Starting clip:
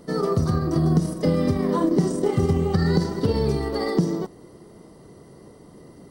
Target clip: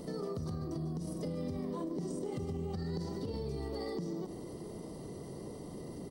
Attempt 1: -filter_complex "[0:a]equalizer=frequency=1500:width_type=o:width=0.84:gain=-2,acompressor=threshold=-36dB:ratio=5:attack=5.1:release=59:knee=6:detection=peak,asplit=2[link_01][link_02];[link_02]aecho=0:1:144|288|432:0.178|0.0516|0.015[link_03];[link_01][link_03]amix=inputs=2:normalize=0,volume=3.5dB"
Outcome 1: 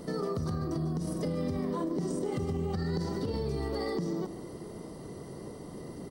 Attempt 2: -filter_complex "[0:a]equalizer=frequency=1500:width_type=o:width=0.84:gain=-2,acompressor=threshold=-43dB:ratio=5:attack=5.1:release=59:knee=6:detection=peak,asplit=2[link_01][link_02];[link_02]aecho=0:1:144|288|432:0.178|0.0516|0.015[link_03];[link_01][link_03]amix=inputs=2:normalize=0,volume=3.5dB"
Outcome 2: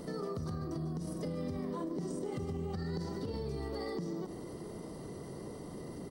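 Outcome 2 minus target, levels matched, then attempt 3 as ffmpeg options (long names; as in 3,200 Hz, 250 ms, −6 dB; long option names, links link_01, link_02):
2,000 Hz band +4.0 dB
-filter_complex "[0:a]equalizer=frequency=1500:width_type=o:width=0.84:gain=-9,acompressor=threshold=-43dB:ratio=5:attack=5.1:release=59:knee=6:detection=peak,asplit=2[link_01][link_02];[link_02]aecho=0:1:144|288|432:0.178|0.0516|0.015[link_03];[link_01][link_03]amix=inputs=2:normalize=0,volume=3.5dB"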